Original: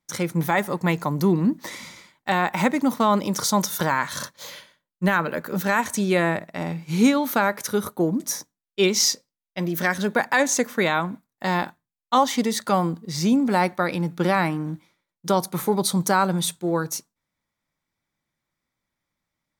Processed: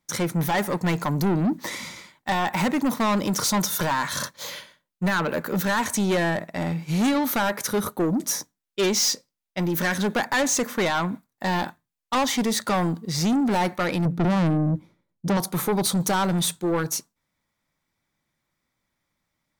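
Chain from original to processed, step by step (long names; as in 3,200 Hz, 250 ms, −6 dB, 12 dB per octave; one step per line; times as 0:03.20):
0:14.05–0:15.37: tilt shelving filter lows +10 dB, about 660 Hz
soft clipping −22.5 dBFS, distortion −7 dB
level +4 dB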